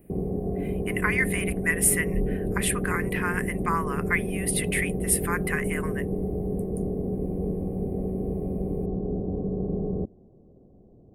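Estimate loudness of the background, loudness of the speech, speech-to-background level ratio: -29.5 LUFS, -27.5 LUFS, 2.0 dB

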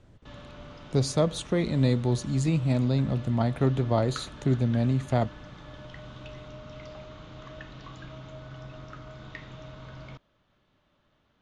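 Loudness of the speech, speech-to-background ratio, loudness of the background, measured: -26.5 LUFS, 18.5 dB, -45.0 LUFS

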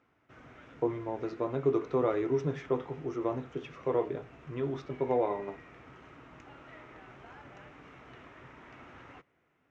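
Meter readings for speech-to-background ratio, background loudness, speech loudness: 19.5 dB, -52.5 LUFS, -33.0 LUFS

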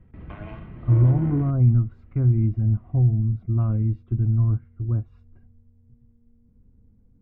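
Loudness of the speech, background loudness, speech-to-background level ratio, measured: -22.0 LUFS, -37.5 LUFS, 15.5 dB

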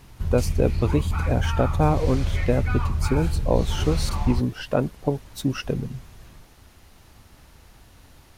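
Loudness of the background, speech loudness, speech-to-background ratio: -27.0 LUFS, -26.0 LUFS, 1.0 dB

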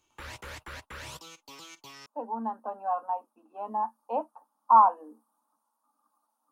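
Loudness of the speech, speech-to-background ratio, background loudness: -27.0 LUFS, 17.0 dB, -44.0 LUFS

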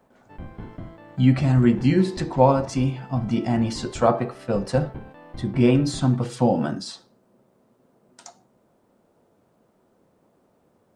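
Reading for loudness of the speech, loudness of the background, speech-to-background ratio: -22.0 LUFS, -41.5 LUFS, 19.5 dB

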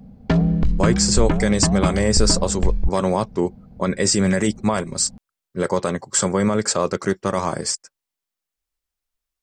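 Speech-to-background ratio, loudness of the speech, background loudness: 1.0 dB, -21.0 LUFS, -22.0 LUFS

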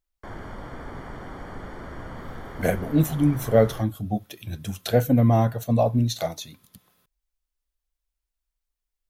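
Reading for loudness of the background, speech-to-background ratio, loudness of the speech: -39.5 LUFS, 16.5 dB, -23.0 LUFS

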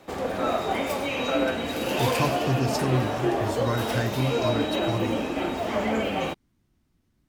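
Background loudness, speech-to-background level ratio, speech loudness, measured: -27.0 LUFS, -2.5 dB, -29.5 LUFS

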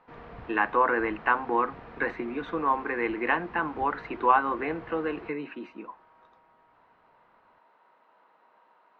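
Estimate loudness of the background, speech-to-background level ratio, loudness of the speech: -46.5 LUFS, 18.5 dB, -28.0 LUFS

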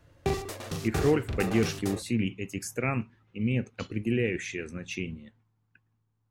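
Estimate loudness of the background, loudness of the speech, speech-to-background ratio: -35.0 LUFS, -30.5 LUFS, 4.5 dB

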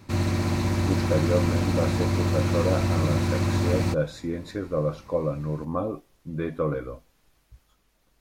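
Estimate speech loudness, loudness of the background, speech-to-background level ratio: -29.5 LUFS, -25.0 LUFS, -4.5 dB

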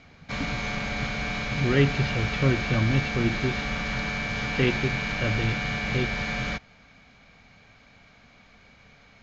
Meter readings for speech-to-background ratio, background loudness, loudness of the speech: 0.5 dB, -28.5 LUFS, -28.0 LUFS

